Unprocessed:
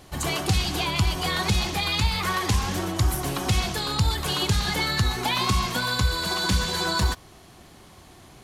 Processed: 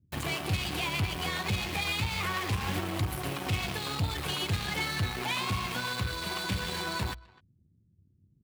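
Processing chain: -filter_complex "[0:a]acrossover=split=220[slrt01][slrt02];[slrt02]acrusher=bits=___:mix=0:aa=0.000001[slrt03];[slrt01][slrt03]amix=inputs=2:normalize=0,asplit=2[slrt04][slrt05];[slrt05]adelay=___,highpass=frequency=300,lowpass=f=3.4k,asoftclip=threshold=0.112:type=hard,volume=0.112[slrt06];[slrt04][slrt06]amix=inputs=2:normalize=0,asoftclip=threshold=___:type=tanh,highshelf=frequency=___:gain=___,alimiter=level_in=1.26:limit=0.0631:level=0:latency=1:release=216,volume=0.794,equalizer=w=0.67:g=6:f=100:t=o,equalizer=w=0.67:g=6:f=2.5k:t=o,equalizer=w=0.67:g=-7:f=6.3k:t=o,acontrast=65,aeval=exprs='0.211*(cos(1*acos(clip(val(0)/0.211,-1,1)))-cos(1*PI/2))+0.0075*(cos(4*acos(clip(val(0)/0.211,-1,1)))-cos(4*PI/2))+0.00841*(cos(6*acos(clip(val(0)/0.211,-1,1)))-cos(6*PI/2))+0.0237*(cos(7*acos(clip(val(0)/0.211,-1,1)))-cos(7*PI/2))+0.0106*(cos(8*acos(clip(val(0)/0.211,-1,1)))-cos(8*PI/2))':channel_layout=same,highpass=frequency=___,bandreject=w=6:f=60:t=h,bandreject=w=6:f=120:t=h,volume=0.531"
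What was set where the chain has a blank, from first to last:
5, 260, 0.119, 5.8k, -4.5, 76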